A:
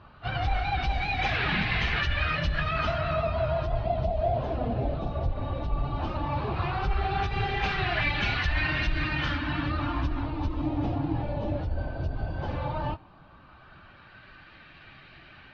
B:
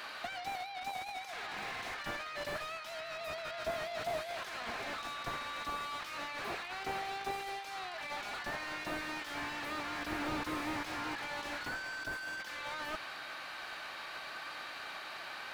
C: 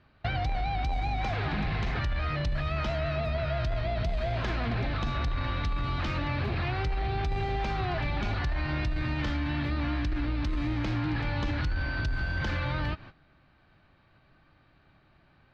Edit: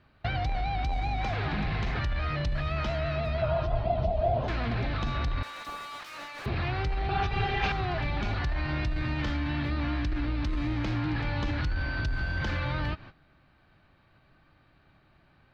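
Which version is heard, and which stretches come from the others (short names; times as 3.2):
C
3.42–4.48 from A
5.43–6.46 from B
7.09–7.72 from A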